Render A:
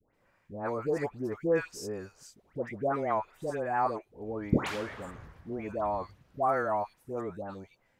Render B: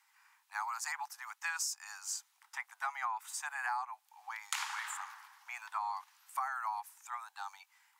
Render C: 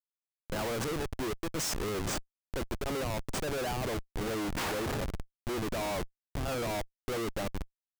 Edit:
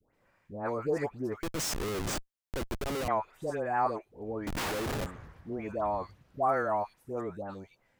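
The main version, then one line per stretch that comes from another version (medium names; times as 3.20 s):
A
1.43–3.08 s: from C
4.47–5.06 s: from C
not used: B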